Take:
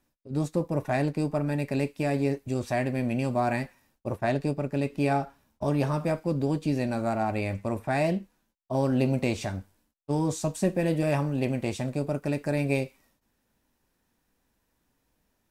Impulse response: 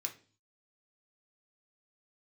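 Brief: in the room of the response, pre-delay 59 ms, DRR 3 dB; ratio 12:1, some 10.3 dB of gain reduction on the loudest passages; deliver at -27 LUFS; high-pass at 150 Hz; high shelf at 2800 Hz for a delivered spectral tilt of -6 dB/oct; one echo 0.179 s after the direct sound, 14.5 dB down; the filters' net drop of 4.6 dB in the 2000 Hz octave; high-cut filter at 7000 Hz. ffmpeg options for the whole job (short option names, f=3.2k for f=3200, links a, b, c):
-filter_complex "[0:a]highpass=150,lowpass=7k,equalizer=f=2k:t=o:g=-8,highshelf=f=2.8k:g=4.5,acompressor=threshold=-32dB:ratio=12,aecho=1:1:179:0.188,asplit=2[a][b];[1:a]atrim=start_sample=2205,adelay=59[c];[b][c]afir=irnorm=-1:irlink=0,volume=-2dB[d];[a][d]amix=inputs=2:normalize=0,volume=10dB"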